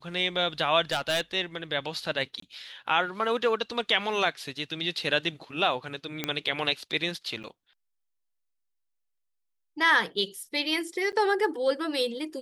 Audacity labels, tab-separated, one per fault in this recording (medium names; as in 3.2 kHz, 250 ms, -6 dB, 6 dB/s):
0.910000	1.210000	clipped -22 dBFS
2.400000	2.420000	dropout 24 ms
6.240000	6.240000	pop -12 dBFS
7.430000	7.440000	dropout 8.5 ms
11.120000	11.130000	dropout 8.8 ms